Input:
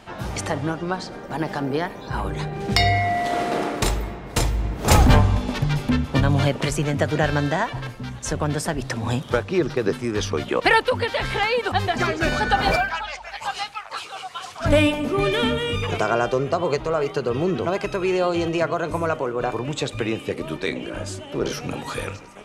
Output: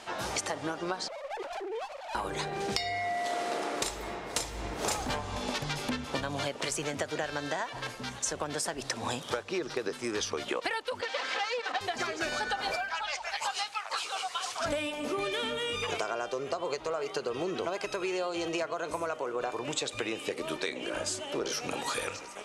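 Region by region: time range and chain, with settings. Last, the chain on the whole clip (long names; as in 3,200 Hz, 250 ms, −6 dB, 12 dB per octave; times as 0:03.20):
0:01.08–0:02.15: three sine waves on the formant tracks + downward compressor, threshold −32 dBFS + windowed peak hold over 17 samples
0:11.01–0:11.81: lower of the sound and its delayed copy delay 3.9 ms + band-pass filter 310–4,600 Hz + mains-hum notches 50/100/150/200/250/300/350/400 Hz
whole clip: low-pass filter 10,000 Hz 12 dB per octave; bass and treble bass −15 dB, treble +7 dB; downward compressor 12 to 1, threshold −29 dBFS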